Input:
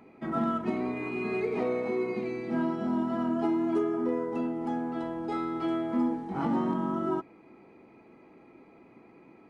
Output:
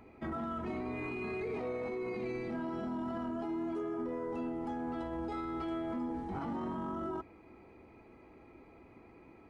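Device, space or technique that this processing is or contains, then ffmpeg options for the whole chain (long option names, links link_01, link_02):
car stereo with a boomy subwoofer: -af "lowshelf=frequency=110:width_type=q:width=1.5:gain=12,alimiter=level_in=5.5dB:limit=-24dB:level=0:latency=1:release=12,volume=-5.5dB,volume=-1.5dB"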